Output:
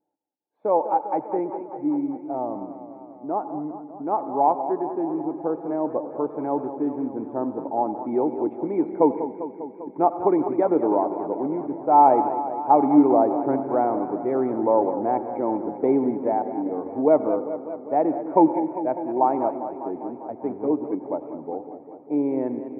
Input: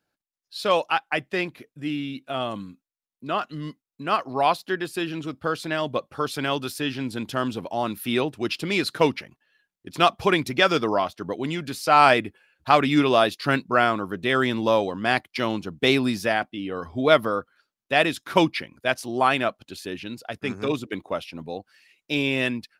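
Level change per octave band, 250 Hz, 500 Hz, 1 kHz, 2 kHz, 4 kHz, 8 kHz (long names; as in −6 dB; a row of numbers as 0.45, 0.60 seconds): +3.5 dB, +2.0 dB, +2.0 dB, below −20 dB, below −40 dB, below −40 dB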